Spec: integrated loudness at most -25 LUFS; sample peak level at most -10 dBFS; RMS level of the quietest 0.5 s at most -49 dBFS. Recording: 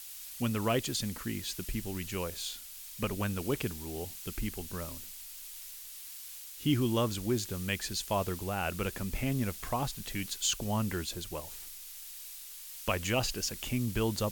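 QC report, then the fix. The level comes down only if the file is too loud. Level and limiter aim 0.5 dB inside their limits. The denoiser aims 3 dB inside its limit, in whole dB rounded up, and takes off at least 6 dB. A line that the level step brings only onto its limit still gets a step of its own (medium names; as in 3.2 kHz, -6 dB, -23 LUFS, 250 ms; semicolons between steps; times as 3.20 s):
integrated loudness -34.5 LUFS: pass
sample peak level -16.0 dBFS: pass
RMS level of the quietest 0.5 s -46 dBFS: fail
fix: noise reduction 6 dB, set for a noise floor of -46 dBFS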